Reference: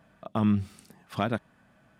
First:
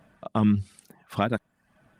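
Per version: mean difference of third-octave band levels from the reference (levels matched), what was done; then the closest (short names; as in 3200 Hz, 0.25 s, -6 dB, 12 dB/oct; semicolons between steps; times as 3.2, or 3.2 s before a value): 3.0 dB: reverb removal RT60 0.59 s; gain +3.5 dB; Opus 32 kbps 48000 Hz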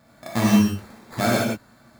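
9.0 dB: sample-rate reducer 2900 Hz, jitter 0%; non-linear reverb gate 0.21 s flat, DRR -6.5 dB; gain +1.5 dB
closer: first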